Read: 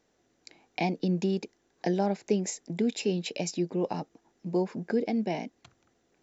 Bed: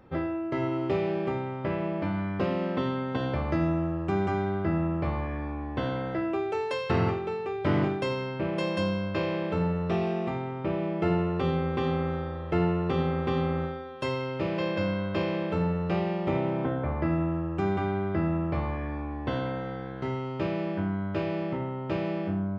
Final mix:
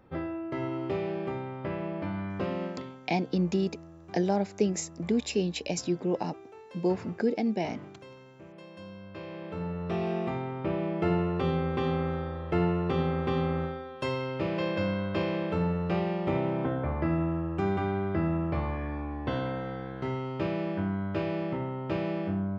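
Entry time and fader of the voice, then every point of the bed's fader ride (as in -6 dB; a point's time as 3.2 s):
2.30 s, +0.5 dB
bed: 2.65 s -4 dB
3.01 s -19.5 dB
8.68 s -19.5 dB
10.15 s -1 dB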